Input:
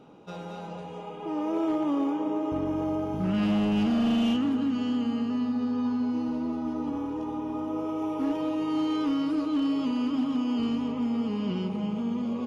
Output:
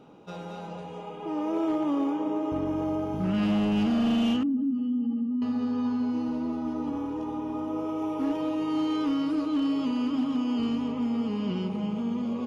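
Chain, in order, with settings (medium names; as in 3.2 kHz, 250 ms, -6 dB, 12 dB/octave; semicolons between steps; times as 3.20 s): 4.43–5.42 s: spectral contrast enhancement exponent 1.8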